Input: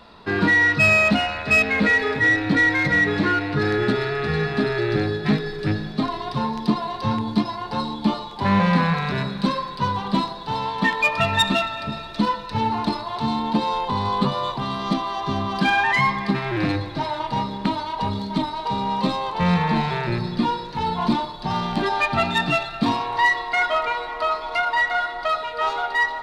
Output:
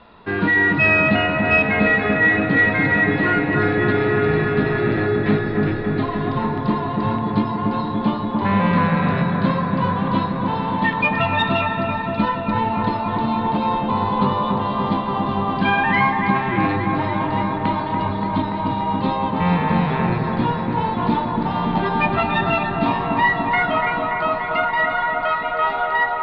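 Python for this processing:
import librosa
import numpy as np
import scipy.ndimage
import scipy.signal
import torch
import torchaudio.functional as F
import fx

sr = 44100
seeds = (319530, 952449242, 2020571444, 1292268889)

y = scipy.signal.sosfilt(scipy.signal.butter(4, 3300.0, 'lowpass', fs=sr, output='sos'), x)
y = fx.echo_wet_lowpass(y, sr, ms=288, feedback_pct=78, hz=1600.0, wet_db=-3.0)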